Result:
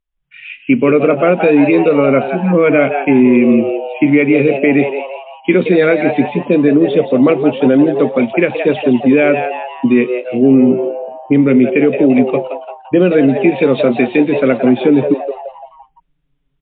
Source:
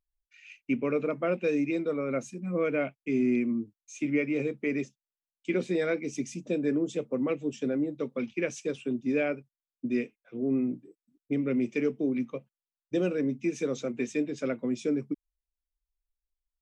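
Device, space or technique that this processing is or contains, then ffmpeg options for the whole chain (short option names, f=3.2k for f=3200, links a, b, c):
low-bitrate web radio: -filter_complex "[0:a]lowpass=5.7k,asettb=1/sr,asplit=3[a][b][c];[a]atrim=end=13.144[d];[b]atrim=start=13.14:end=14.3,asetpts=PTS-STARTPTS,afade=t=in:d=0.004:c=qsin,afade=t=out:st=1.156:d=0.004:c=qsin,highshelf=f=2.2k:g=3[e];[c]atrim=start=14.296[f];[d][e]acrossfade=d=0.004:c1=hsin:c2=qsin[g];[g][f]acrossfade=d=0.004:c1=qsin:c2=hsin,asplit=6[h][i][j][k][l][m];[i]adelay=171,afreqshift=130,volume=-10dB[n];[j]adelay=342,afreqshift=260,volume=-16.7dB[o];[k]adelay=513,afreqshift=390,volume=-23.5dB[p];[l]adelay=684,afreqshift=520,volume=-30.2dB[q];[m]adelay=855,afreqshift=650,volume=-37dB[r];[h][n][o][p][q][r]amix=inputs=6:normalize=0,asettb=1/sr,asplit=3[s][t][u];[s]atrim=end=6.434[v];[t]atrim=start=6.43:end=7.22,asetpts=PTS-STARTPTS,afade=t=in:d=0.004:c=qsin,afade=t=out:st=0.786:d=0.004:c=qsin,adynamicequalizer=threshold=0.00447:dfrequency=800:dqfactor=2.4:tfrequency=800:tqfactor=2.4:attack=5:release=100:ratio=0.375:range=2.5:mode=cutabove:tftype=bell[w];[u]atrim=start=7.216[x];[v][w]acrossfade=d=0.004:c1=hsin:c2=qsin[y];[y][x]acrossfade=d=0.004:c1=qsin:c2=hsin,dynaudnorm=f=100:g=5:m=14dB,alimiter=limit=-8dB:level=0:latency=1:release=83,volume=7dB" -ar 8000 -c:a libmp3lame -b:a 32k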